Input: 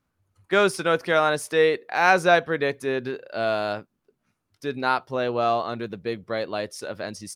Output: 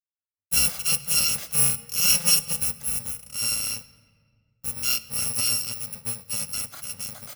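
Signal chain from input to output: FFT order left unsorted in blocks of 128 samples; gate -44 dBFS, range -42 dB; on a send: reverb RT60 2.0 s, pre-delay 4 ms, DRR 14 dB; on the sum: gain -2 dB

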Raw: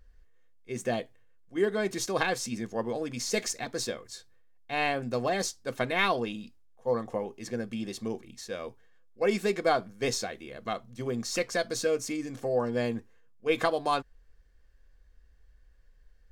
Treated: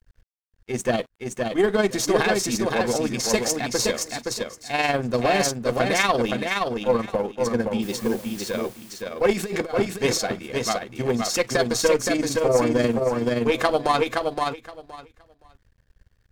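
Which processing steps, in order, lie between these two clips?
in parallel at +2 dB: limiter -21 dBFS, peak gain reduction 10.5 dB; 9.33–9.87 on the sum: negative-ratio compressor -26 dBFS, ratio -0.5; added harmonics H 6 -22 dB, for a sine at -7.5 dBFS; crossover distortion -50 dBFS; tremolo 20 Hz, depth 50%; 7.82–8.5 requantised 8-bit, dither triangular; on a send: feedback echo 0.519 s, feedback 17%, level -4 dB; 12.84–13.52 on the sum: three-band squash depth 100%; gain +4 dB

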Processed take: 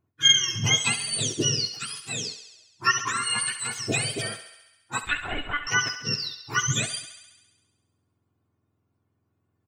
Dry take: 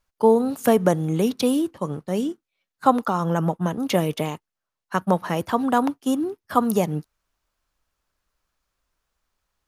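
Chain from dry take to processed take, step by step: spectrum mirrored in octaves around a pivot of 1200 Hz; 5.03–5.67 monotone LPC vocoder at 8 kHz 290 Hz; comb 2.8 ms, depth 40%; on a send: thinning echo 68 ms, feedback 68%, high-pass 420 Hz, level -11.5 dB; on the sum: gain -1.5 dB

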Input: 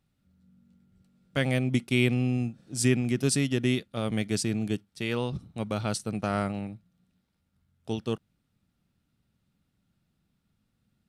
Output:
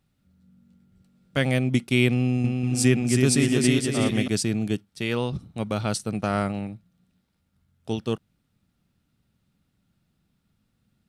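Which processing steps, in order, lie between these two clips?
2.12–4.28 bouncing-ball echo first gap 0.32 s, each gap 0.6×, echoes 5; gain +3.5 dB

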